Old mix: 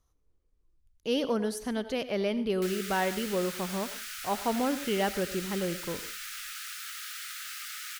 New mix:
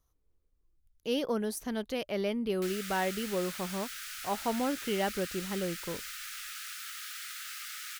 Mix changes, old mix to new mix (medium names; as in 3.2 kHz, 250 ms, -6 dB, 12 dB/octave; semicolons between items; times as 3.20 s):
speech: remove low-pass 10 kHz 12 dB/octave; reverb: off